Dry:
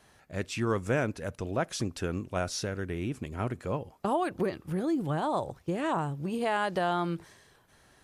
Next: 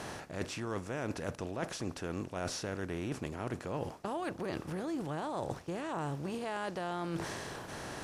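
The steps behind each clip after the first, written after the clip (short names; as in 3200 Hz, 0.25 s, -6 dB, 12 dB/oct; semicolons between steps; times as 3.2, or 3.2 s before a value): per-bin compression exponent 0.6; reverse; compressor 12:1, threshold -35 dBFS, peak gain reduction 15.5 dB; reverse; gain +1.5 dB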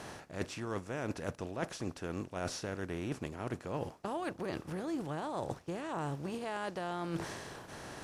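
upward expander 1.5:1, over -50 dBFS; gain +1 dB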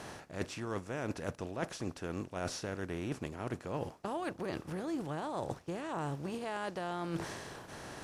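nothing audible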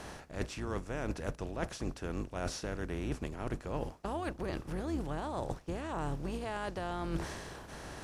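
octaver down 2 oct, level 0 dB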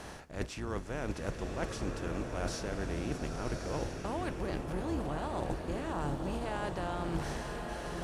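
bloom reverb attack 1.24 s, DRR 2.5 dB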